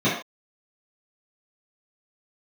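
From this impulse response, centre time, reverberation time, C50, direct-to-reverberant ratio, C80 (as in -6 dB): 41 ms, not exponential, 3.5 dB, -12.5 dB, 8.5 dB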